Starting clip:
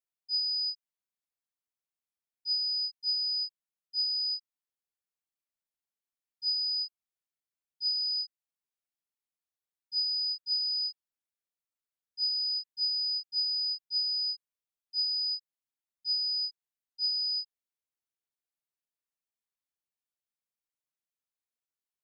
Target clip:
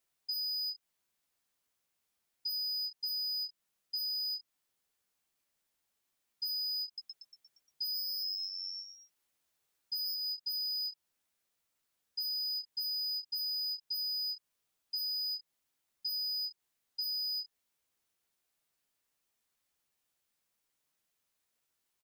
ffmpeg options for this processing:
ffmpeg -i in.wav -filter_complex "[0:a]asettb=1/sr,asplit=3[link_01][link_02][link_03];[link_01]atrim=end=6.864[link_04];[link_02]atrim=start=6.86:end=10.15,asetpts=PTS-STARTPTS,afade=type=in:duration=0.004:curve=qsin,afade=type=out:start_time=3.286:duration=0.004:curve=qsin,asplit=8[link_05][link_06][link_07][link_08][link_09][link_10][link_11][link_12];[link_06]adelay=117,afreqshift=93,volume=-5dB[link_13];[link_07]adelay=234,afreqshift=186,volume=-10dB[link_14];[link_08]adelay=351,afreqshift=279,volume=-15.1dB[link_15];[link_09]adelay=468,afreqshift=372,volume=-20.1dB[link_16];[link_10]adelay=585,afreqshift=465,volume=-25.1dB[link_17];[link_11]adelay=702,afreqshift=558,volume=-30.2dB[link_18];[link_12]adelay=819,afreqshift=651,volume=-35.2dB[link_19];[link_05][link_13][link_14][link_15][link_16][link_17][link_18][link_19]amix=inputs=8:normalize=0,atrim=end_sample=145089[link_20];[link_03]atrim=start=10.146[link_21];[link_04][link_20]acrossfade=duration=0.004:curve1=hsin:curve2=qsin[link_22];[link_22][link_21]acrossfade=duration=0.004:curve1=qsin:curve2=hsin,aeval=exprs='0.0794*sin(PI/2*2.24*val(0)/0.0794)':channel_layout=same,asplit=2[link_23][link_24];[link_24]adelay=14,volume=-8dB[link_25];[link_23][link_25]amix=inputs=2:normalize=0,acompressor=threshold=-36dB:ratio=6" out.wav

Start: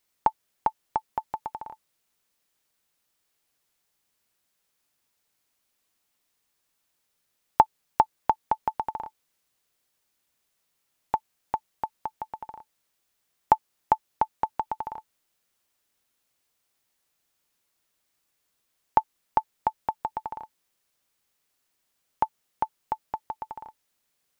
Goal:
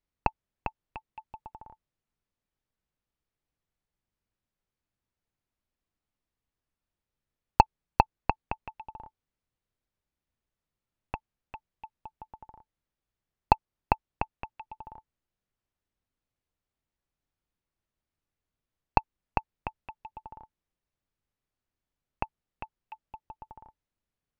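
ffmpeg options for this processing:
ffmpeg -i in.wav -af "aeval=exprs='0.794*(cos(1*acos(clip(val(0)/0.794,-1,1)))-cos(1*PI/2))+0.158*(cos(7*acos(clip(val(0)/0.794,-1,1)))-cos(7*PI/2))':channel_layout=same,aemphasis=mode=reproduction:type=riaa,volume=-2.5dB" out.wav

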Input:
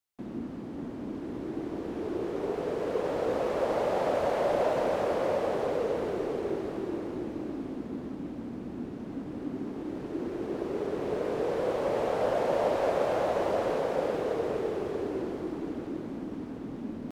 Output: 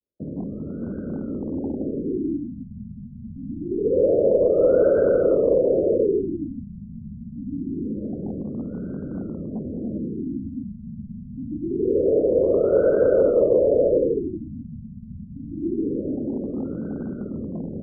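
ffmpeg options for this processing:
ffmpeg -i in.wav -filter_complex "[0:a]adynamicequalizer=threshold=0.01:dfrequency=800:dqfactor=1.8:tfrequency=800:tqfactor=1.8:attack=5:release=100:ratio=0.375:range=2.5:mode=boostabove:tftype=bell,asplit=2[link_01][link_02];[link_02]highpass=frequency=720:poles=1,volume=12dB,asoftclip=type=tanh:threshold=-12.5dB[link_03];[link_01][link_03]amix=inputs=2:normalize=0,lowpass=frequency=1400:poles=1,volume=-6dB,asuperstop=centerf=1000:order=8:qfactor=1.1,bandreject=frequency=60:width_type=h:width=6,bandreject=frequency=120:width_type=h:width=6,bandreject=frequency=180:width_type=h:width=6,bandreject=frequency=240:width_type=h:width=6,bandreject=frequency=300:width_type=h:width=6,bandreject=frequency=360:width_type=h:width=6,bandreject=frequency=420:width_type=h:width=6,bandreject=frequency=480:width_type=h:width=6,bandreject=frequency=540:width_type=h:width=6,asetrate=42336,aresample=44100,aecho=1:1:303:0.0668,acrossover=split=290|550|2700[link_04][link_05][link_06][link_07];[link_04]aeval=exprs='0.0141*(abs(mod(val(0)/0.0141+3,4)-2)-1)':channel_layout=same[link_08];[link_08][link_05][link_06][link_07]amix=inputs=4:normalize=0,afreqshift=-43,equalizer=frequency=78:width=5.7:gain=10,afftfilt=real='re*lt(b*sr/1024,220*pow(1600/220,0.5+0.5*sin(2*PI*0.25*pts/sr)))':imag='im*lt(b*sr/1024,220*pow(1600/220,0.5+0.5*sin(2*PI*0.25*pts/sr)))':win_size=1024:overlap=0.75,volume=8.5dB" out.wav

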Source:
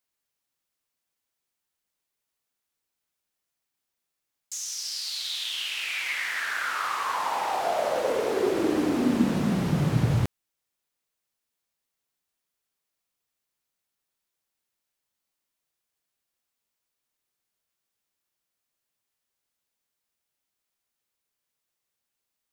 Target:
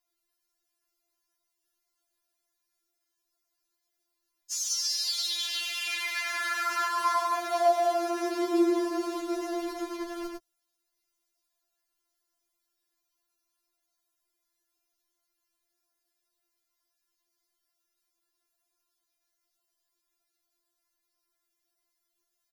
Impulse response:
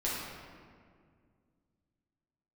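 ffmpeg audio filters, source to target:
-af "aecho=1:1:6:0.36,aecho=1:1:102:0.422,acompressor=threshold=-26dB:ratio=6,afftfilt=real='re*4*eq(mod(b,16),0)':imag='im*4*eq(mod(b,16),0)':win_size=2048:overlap=0.75,volume=3.5dB"

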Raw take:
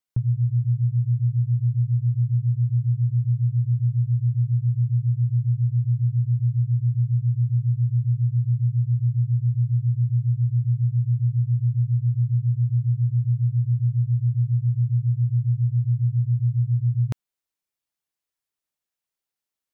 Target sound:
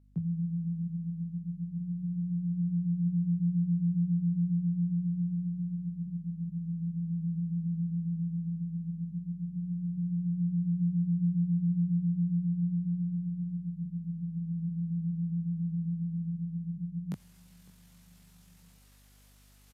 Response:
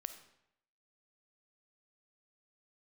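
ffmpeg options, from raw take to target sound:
-filter_complex "[0:a]areverse,acompressor=mode=upward:threshold=-35dB:ratio=2.5,areverse,alimiter=limit=-17.5dB:level=0:latency=1:release=76,asplit=2[link_01][link_02];[link_02]aecho=0:1:542|1084|1626:0.0708|0.0368|0.0191[link_03];[link_01][link_03]amix=inputs=2:normalize=0,asetrate=29433,aresample=44100,atempo=1.49831,afreqshift=92,flanger=delay=19.5:depth=2.5:speed=0.13,aeval=exprs='val(0)+0.00141*(sin(2*PI*50*n/s)+sin(2*PI*2*50*n/s)/2+sin(2*PI*3*50*n/s)/3+sin(2*PI*4*50*n/s)/4+sin(2*PI*5*50*n/s)/5)':channel_layout=same,volume=-2.5dB"

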